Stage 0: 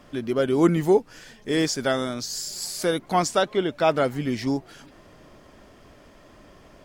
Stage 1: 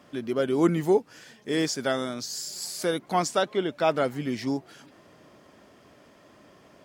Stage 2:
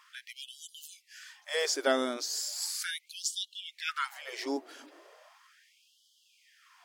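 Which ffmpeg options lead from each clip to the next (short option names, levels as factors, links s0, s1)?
-af "highpass=120,volume=0.708"
-af "afftfilt=real='re*gte(b*sr/1024,240*pow(2900/240,0.5+0.5*sin(2*PI*0.37*pts/sr)))':imag='im*gte(b*sr/1024,240*pow(2900/240,0.5+0.5*sin(2*PI*0.37*pts/sr)))':win_size=1024:overlap=0.75"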